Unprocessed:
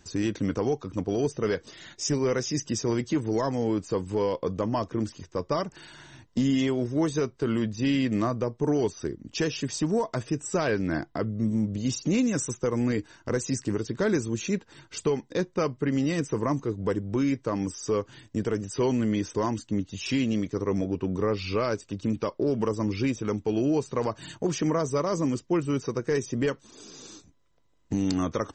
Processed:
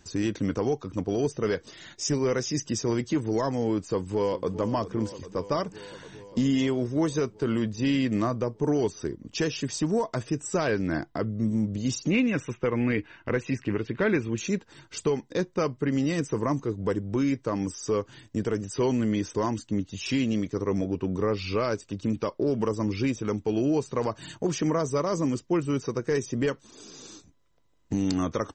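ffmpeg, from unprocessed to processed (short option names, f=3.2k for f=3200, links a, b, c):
-filter_complex "[0:a]asplit=2[a][b];[b]afade=t=in:st=3.79:d=0.01,afade=t=out:st=4.58:d=0.01,aecho=0:1:400|800|1200|1600|2000|2400|2800|3200|3600|4000|4400|4800:0.211349|0.169079|0.135263|0.108211|0.0865685|0.0692548|0.0554038|0.0443231|0.0354585|0.0283668|0.0226934|0.0181547[c];[a][c]amix=inputs=2:normalize=0,asettb=1/sr,asplit=3[d][e][f];[d]atrim=end=12.104[g];[e]atrim=start=12.1:end=14.38,asetpts=PTS-STARTPTS,afade=t=in:d=0.004:c=qsin,afade=t=out:st=2.276:d=0.004:c=qsin,lowpass=f=2.5k:t=q:w=2.8[h];[f]atrim=start=14.376[i];[g][h]acrossfade=d=0.004:c1=hsin:c2=qsin[j];[j][i]acrossfade=d=0.004:c1=qsin:c2=hsin"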